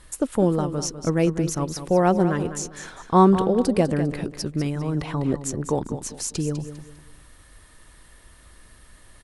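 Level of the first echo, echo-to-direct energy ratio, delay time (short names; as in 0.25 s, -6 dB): -11.0 dB, -10.5 dB, 0.2 s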